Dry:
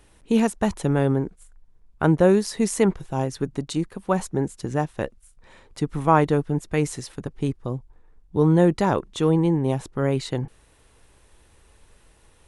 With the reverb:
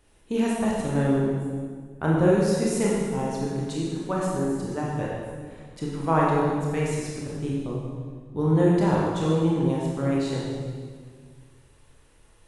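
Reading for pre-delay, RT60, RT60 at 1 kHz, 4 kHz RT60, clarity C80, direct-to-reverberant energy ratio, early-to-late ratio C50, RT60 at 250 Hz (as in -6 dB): 21 ms, 1.8 s, 1.6 s, 1.5 s, 1.0 dB, -5.0 dB, -1.5 dB, 2.3 s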